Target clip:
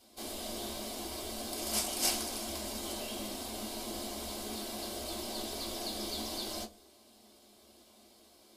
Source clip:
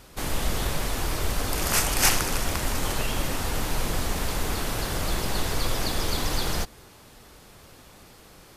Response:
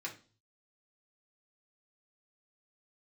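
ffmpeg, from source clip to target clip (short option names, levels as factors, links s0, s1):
-filter_complex "[0:a]equalizer=f=1700:w=1.1:g=-12.5[s0];[1:a]atrim=start_sample=2205,asetrate=88200,aresample=44100[s1];[s0][s1]afir=irnorm=-1:irlink=0"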